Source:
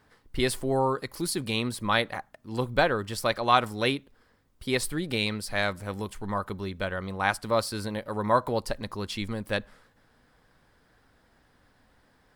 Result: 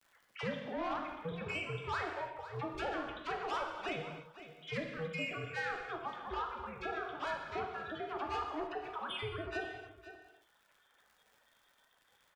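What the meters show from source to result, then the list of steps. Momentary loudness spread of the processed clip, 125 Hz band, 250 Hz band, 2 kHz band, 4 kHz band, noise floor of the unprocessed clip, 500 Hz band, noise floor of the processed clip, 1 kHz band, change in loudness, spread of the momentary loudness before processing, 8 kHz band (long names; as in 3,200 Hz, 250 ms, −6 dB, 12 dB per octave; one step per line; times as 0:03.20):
7 LU, −13.5 dB, −13.0 dB, −9.0 dB, −13.5 dB, −65 dBFS, −12.0 dB, −72 dBFS, −9.5 dB, −11.0 dB, 10 LU, −23.5 dB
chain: three sine waves on the formant tracks
noise reduction from a noise print of the clip's start 14 dB
low-shelf EQ 410 Hz −7.5 dB
downward compressor 2 to 1, threshold −38 dBFS, peak gain reduction 12 dB
soft clipping −34.5 dBFS, distortion −10 dB
all-pass dispersion lows, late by 57 ms, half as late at 1,300 Hz
surface crackle 180 per second −68 dBFS
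ring modulation 160 Hz
single-tap delay 508 ms −19 dB
reverb whose tail is shaped and stops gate 330 ms falling, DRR 2 dB
multiband upward and downward compressor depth 40%
level +3.5 dB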